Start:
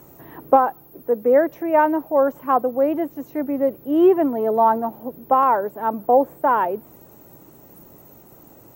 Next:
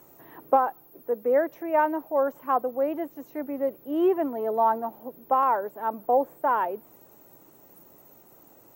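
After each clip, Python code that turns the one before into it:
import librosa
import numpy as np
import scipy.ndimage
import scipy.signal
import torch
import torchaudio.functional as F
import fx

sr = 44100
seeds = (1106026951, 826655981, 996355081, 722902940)

y = fx.low_shelf(x, sr, hz=220.0, db=-11.0)
y = F.gain(torch.from_numpy(y), -5.0).numpy()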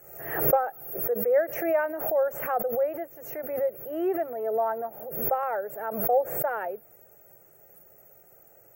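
y = fx.fixed_phaser(x, sr, hz=1000.0, stages=6)
y = fx.pre_swell(y, sr, db_per_s=66.0)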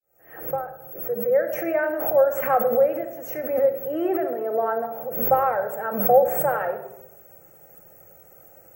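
y = fx.fade_in_head(x, sr, length_s=2.31)
y = fx.room_shoebox(y, sr, seeds[0], volume_m3=2600.0, walls='furnished', distance_m=2.1)
y = F.gain(torch.from_numpy(y), 4.0).numpy()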